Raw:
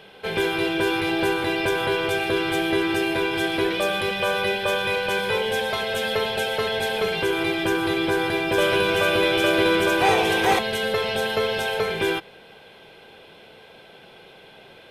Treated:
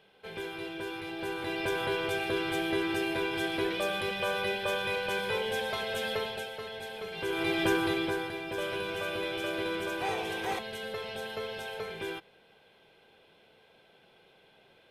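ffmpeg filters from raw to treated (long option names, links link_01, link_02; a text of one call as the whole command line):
ffmpeg -i in.wav -af "volume=4.5dB,afade=type=in:start_time=1.16:duration=0.58:silence=0.421697,afade=type=out:start_time=6.1:duration=0.43:silence=0.398107,afade=type=in:start_time=7.11:duration=0.54:silence=0.237137,afade=type=out:start_time=7.65:duration=0.67:silence=0.298538" out.wav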